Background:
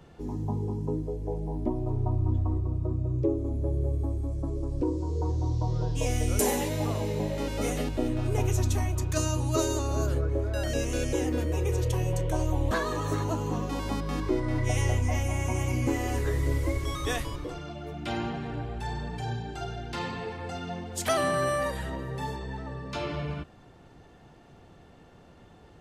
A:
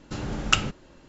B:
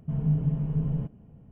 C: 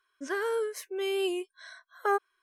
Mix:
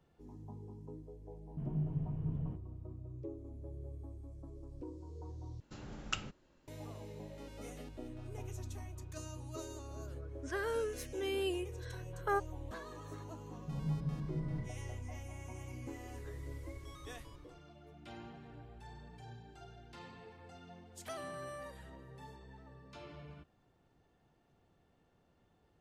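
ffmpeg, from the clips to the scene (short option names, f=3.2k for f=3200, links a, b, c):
-filter_complex "[2:a]asplit=2[a][b];[0:a]volume=-18.5dB,asplit=2[c][d];[c]atrim=end=5.604[e];[1:a]atrim=end=1.08,asetpts=PTS-STARTPTS,volume=-16.5dB[f];[d]atrim=start=6.676[g];[a]atrim=end=1.51,asetpts=PTS-STARTPTS,volume=-11.5dB,afade=t=in:d=0.004:c=hsin,afade=t=out:st=1.506:d=0.004:c=hsin,adelay=1490[h];[3:a]atrim=end=2.42,asetpts=PTS-STARTPTS,volume=-6.5dB,afade=t=in:d=0.004:c=hsin,afade=t=out:st=2.416:d=0.004:c=hsin,adelay=10220[i];[b]atrim=end=1.51,asetpts=PTS-STARTPTS,volume=-12dB,afade=t=in:d=0.004:c=hsin,afade=t=out:st=1.506:d=0.004:c=hsin,adelay=13600[j];[e][f]acrossfade=d=0.004:c1=hsin:c2=hsin[k];[k][g]acrossfade=d=0.004:c1=hsin:c2=hsin[l];[l][h][i][j]amix=inputs=4:normalize=0"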